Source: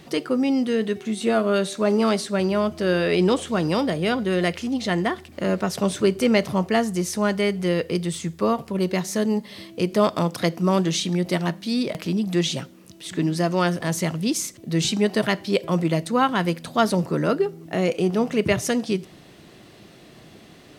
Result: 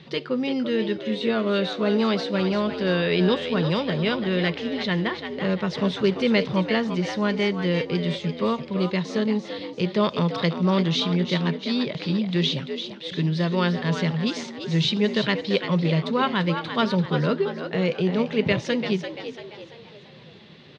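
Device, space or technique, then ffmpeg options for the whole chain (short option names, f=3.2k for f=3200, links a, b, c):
frequency-shifting delay pedal into a guitar cabinet: -filter_complex "[0:a]asplit=6[a][b][c][d][e][f];[b]adelay=341,afreqshift=73,volume=-8dB[g];[c]adelay=682,afreqshift=146,volume=-15.3dB[h];[d]adelay=1023,afreqshift=219,volume=-22.7dB[i];[e]adelay=1364,afreqshift=292,volume=-30dB[j];[f]adelay=1705,afreqshift=365,volume=-37.3dB[k];[a][g][h][i][j][k]amix=inputs=6:normalize=0,highpass=100,equalizer=f=150:t=q:w=4:g=5,equalizer=f=300:t=q:w=4:g=-10,equalizer=f=710:t=q:w=4:g=-10,equalizer=f=1.3k:t=q:w=4:g=-4,equalizer=f=3.7k:t=q:w=4:g=5,lowpass=f=4.4k:w=0.5412,lowpass=f=4.4k:w=1.3066"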